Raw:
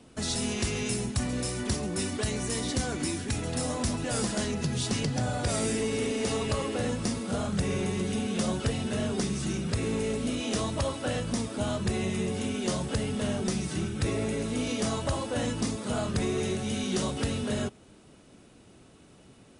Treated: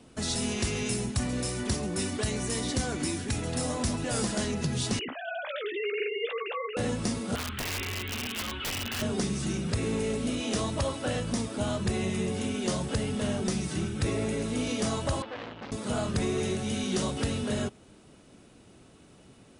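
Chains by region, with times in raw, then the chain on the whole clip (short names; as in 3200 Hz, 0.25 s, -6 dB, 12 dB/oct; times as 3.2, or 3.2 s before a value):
4.99–6.77 sine-wave speech + tilt shelf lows -7.5 dB, about 1300 Hz + doubler 15 ms -10 dB
7.35–9.02 EQ curve 110 Hz 0 dB, 170 Hz -28 dB, 240 Hz -3 dB, 640 Hz -16 dB, 1100 Hz +2 dB, 3100 Hz +9 dB, 6000 Hz -26 dB + wrapped overs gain 26.5 dB
15.22–15.72 LPF 3500 Hz 24 dB/oct + low shelf 350 Hz -9 dB + core saturation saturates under 1700 Hz
whole clip: dry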